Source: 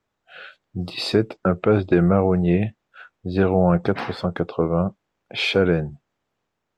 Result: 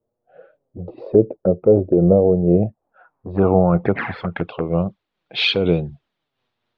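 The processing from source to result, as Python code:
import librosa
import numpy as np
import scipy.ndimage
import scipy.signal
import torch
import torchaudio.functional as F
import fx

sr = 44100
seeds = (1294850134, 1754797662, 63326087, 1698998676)

y = fx.env_flanger(x, sr, rest_ms=8.5, full_db=-16.5)
y = fx.filter_sweep_lowpass(y, sr, from_hz=540.0, to_hz=3800.0, start_s=2.46, end_s=4.84, q=2.8)
y = fx.am_noise(y, sr, seeds[0], hz=5.7, depth_pct=60)
y = F.gain(torch.from_numpy(y), 5.0).numpy()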